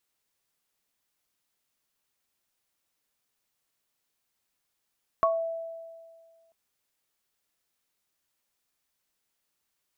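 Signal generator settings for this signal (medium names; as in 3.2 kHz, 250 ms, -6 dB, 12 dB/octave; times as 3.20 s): sine partials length 1.29 s, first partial 660 Hz, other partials 1.11 kHz, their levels 5 dB, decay 1.87 s, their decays 0.22 s, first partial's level -21.5 dB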